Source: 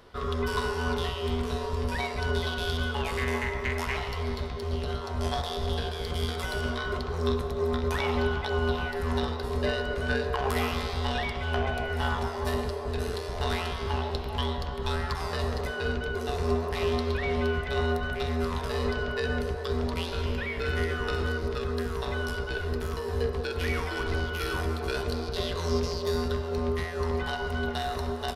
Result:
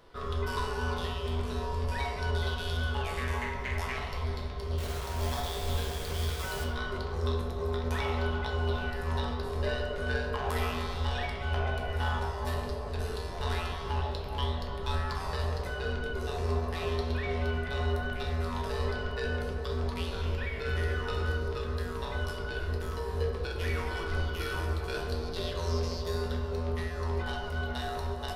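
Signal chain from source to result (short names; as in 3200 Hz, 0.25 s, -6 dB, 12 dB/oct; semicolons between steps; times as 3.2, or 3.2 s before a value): 4.78–6.64 requantised 6-bit, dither none; reverb RT60 0.65 s, pre-delay 6 ms, DRR 2 dB; gain -5.5 dB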